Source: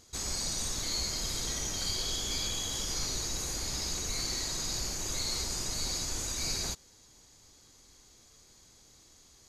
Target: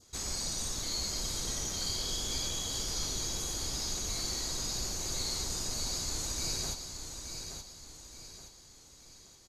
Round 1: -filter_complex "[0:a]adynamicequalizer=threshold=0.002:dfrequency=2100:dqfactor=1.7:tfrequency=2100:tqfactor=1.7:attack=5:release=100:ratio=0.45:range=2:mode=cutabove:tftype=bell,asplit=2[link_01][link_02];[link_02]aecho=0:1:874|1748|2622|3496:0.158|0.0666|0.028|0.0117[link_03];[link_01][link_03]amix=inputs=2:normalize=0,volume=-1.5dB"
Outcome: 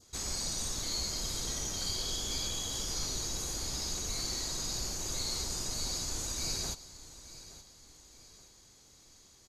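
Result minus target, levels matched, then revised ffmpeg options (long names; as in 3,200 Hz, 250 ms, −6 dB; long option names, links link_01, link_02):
echo-to-direct −8.5 dB
-filter_complex "[0:a]adynamicequalizer=threshold=0.002:dfrequency=2100:dqfactor=1.7:tfrequency=2100:tqfactor=1.7:attack=5:release=100:ratio=0.45:range=2:mode=cutabove:tftype=bell,asplit=2[link_01][link_02];[link_02]aecho=0:1:874|1748|2622|3496|4370:0.422|0.177|0.0744|0.0312|0.0131[link_03];[link_01][link_03]amix=inputs=2:normalize=0,volume=-1.5dB"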